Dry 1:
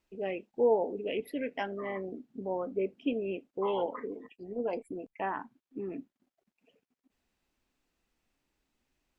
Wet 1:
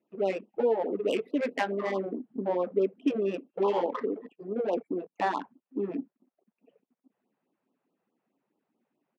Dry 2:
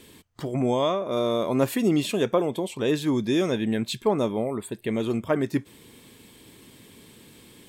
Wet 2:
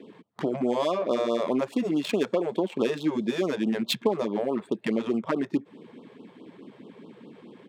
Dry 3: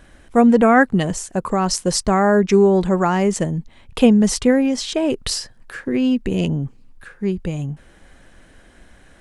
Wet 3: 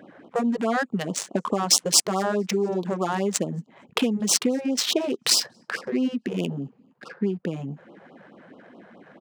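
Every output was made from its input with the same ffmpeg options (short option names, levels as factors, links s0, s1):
-filter_complex "[0:a]acrossover=split=4800[s0][s1];[s0]acompressor=threshold=0.0355:ratio=8[s2];[s1]aecho=1:1:231|462|693|924:0.133|0.064|0.0307|0.0147[s3];[s2][s3]amix=inputs=2:normalize=0,adynamicsmooth=sensitivity=5.5:basefreq=1100,highpass=f=190:w=0.5412,highpass=f=190:w=1.3066,afftfilt=real='re*(1-between(b*sr/1024,240*pow(2000/240,0.5+0.5*sin(2*PI*4.7*pts/sr))/1.41,240*pow(2000/240,0.5+0.5*sin(2*PI*4.7*pts/sr))*1.41))':imag='im*(1-between(b*sr/1024,240*pow(2000/240,0.5+0.5*sin(2*PI*4.7*pts/sr))/1.41,240*pow(2000/240,0.5+0.5*sin(2*PI*4.7*pts/sr))*1.41))':win_size=1024:overlap=0.75,volume=2.66"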